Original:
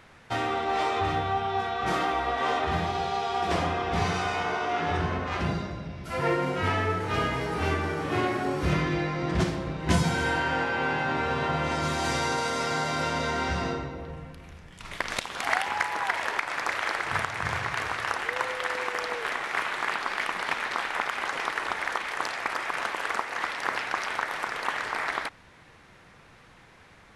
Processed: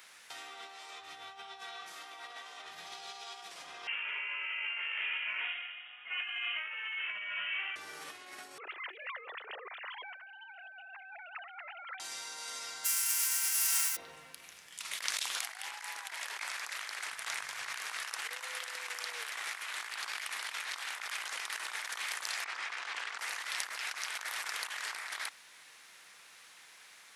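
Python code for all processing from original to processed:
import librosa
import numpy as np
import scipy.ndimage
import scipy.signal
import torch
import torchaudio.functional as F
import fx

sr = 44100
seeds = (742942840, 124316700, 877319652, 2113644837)

y = fx.chain(x, sr, fx.highpass(hz=910.0, slope=12),
    fx.freq_invert(carrier_hz=3500), at=(3.87, 7.76))
y = fx.chain(y, sr, fx.sine_speech(),
    fx.doppler_dist(depth_ms=0.1), at=(8.58, 12.0))
y = fx.envelope_flatten(y, sr, power=0.3, at=(12.84, 13.95), fade=0.02)
y = fx.highpass(y, sr, hz=1000.0, slope=12, at=(12.84, 13.95), fade=0.02)
y = fx.peak_eq(y, sr, hz=3800.0, db=-11.0, octaves=0.53, at=(12.84, 13.95), fade=0.02)
y = fx.chain(y, sr, fx.air_absorb(metres=110.0),
    fx.notch(hz=600.0, q=12.0), at=(22.44, 23.19))
y = fx.low_shelf(y, sr, hz=63.0, db=-11.5)
y = fx.over_compress(y, sr, threshold_db=-35.0, ratio=-1.0)
y = np.diff(y, prepend=0.0)
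y = F.gain(torch.from_numpy(y), 5.0).numpy()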